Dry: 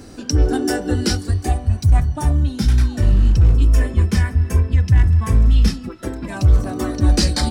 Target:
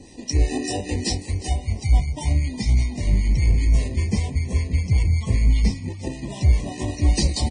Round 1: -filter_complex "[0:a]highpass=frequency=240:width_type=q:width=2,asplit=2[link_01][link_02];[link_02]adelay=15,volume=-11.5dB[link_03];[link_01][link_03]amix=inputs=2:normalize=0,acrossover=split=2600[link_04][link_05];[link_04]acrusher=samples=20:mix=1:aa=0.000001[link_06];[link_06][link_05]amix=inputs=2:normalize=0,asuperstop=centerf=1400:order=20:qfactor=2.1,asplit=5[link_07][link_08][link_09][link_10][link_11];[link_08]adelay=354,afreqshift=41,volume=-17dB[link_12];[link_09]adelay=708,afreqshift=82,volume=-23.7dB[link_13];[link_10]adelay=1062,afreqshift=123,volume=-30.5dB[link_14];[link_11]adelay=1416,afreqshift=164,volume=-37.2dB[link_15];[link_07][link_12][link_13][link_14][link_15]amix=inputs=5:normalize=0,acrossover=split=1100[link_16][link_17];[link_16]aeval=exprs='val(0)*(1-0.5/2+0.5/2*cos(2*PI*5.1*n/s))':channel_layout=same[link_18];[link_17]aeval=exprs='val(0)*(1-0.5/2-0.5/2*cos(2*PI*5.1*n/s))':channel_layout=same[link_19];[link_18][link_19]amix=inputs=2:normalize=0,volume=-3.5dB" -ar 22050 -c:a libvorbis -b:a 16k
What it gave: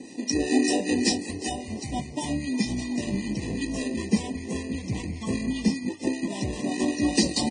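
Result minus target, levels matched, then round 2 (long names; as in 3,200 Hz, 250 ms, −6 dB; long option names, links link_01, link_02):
250 Hz band +9.0 dB
-filter_complex "[0:a]asplit=2[link_01][link_02];[link_02]adelay=15,volume=-11.5dB[link_03];[link_01][link_03]amix=inputs=2:normalize=0,acrossover=split=2600[link_04][link_05];[link_04]acrusher=samples=20:mix=1:aa=0.000001[link_06];[link_06][link_05]amix=inputs=2:normalize=0,asuperstop=centerf=1400:order=20:qfactor=2.1,asplit=5[link_07][link_08][link_09][link_10][link_11];[link_08]adelay=354,afreqshift=41,volume=-17dB[link_12];[link_09]adelay=708,afreqshift=82,volume=-23.7dB[link_13];[link_10]adelay=1062,afreqshift=123,volume=-30.5dB[link_14];[link_11]adelay=1416,afreqshift=164,volume=-37.2dB[link_15];[link_07][link_12][link_13][link_14][link_15]amix=inputs=5:normalize=0,acrossover=split=1100[link_16][link_17];[link_16]aeval=exprs='val(0)*(1-0.5/2+0.5/2*cos(2*PI*5.1*n/s))':channel_layout=same[link_18];[link_17]aeval=exprs='val(0)*(1-0.5/2-0.5/2*cos(2*PI*5.1*n/s))':channel_layout=same[link_19];[link_18][link_19]amix=inputs=2:normalize=0,volume=-3.5dB" -ar 22050 -c:a libvorbis -b:a 16k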